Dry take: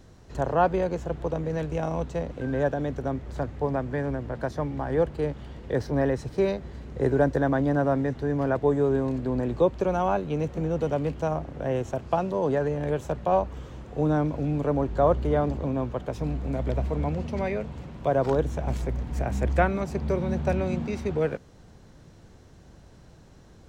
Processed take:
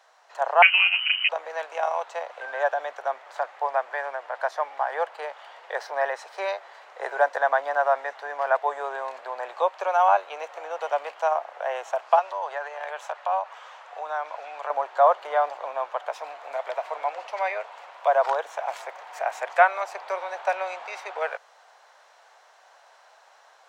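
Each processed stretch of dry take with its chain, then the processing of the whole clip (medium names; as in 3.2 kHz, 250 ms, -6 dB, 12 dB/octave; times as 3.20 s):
0.62–1.29 s: doubling 33 ms -11.5 dB + frequency inversion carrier 3 kHz
12.19–14.70 s: frequency weighting A + compression 2:1, threshold -32 dBFS
whole clip: steep high-pass 680 Hz 36 dB/octave; treble shelf 3.3 kHz -11.5 dB; level rider gain up to 3.5 dB; trim +6.5 dB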